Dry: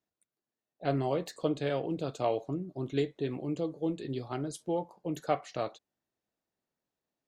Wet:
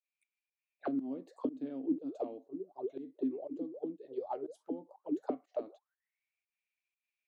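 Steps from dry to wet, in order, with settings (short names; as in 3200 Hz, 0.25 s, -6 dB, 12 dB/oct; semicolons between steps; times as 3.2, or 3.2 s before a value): auto-wah 260–2400 Hz, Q 18, down, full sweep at -28.5 dBFS; pump 121 bpm, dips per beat 1, -18 dB, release 0.165 s; RIAA curve recording; gain +14.5 dB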